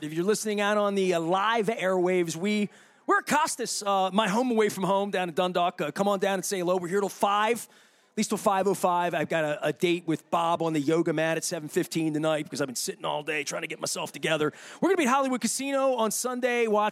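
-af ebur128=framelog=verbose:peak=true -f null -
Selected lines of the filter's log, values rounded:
Integrated loudness:
  I:         -26.6 LUFS
  Threshold: -36.7 LUFS
Loudness range:
  LRA:         2.4 LU
  Threshold: -46.9 LUFS
  LRA low:   -28.4 LUFS
  LRA high:  -26.0 LUFS
True peak:
  Peak:       -9.2 dBFS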